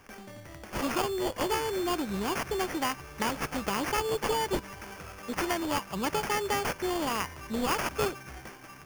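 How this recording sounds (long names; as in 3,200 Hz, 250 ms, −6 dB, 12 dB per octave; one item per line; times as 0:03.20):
aliases and images of a low sample rate 3,900 Hz, jitter 0%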